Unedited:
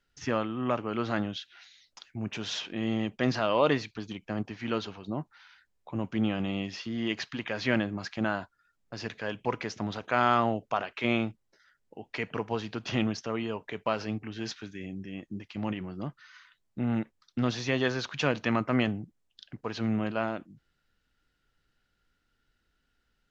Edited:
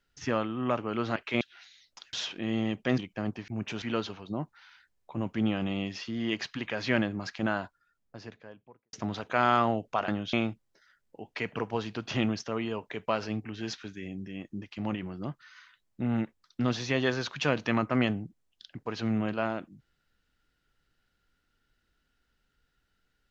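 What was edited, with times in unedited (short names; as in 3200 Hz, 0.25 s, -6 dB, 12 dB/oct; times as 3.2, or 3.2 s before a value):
1.16–1.41 swap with 10.86–11.11
2.13–2.47 move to 4.6
3.32–4.1 cut
8.33–9.71 studio fade out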